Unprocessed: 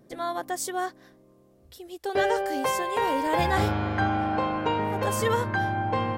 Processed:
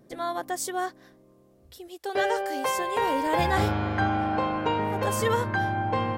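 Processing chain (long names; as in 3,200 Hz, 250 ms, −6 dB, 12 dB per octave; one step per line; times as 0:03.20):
0:01.88–0:02.78: low-shelf EQ 220 Hz −10.5 dB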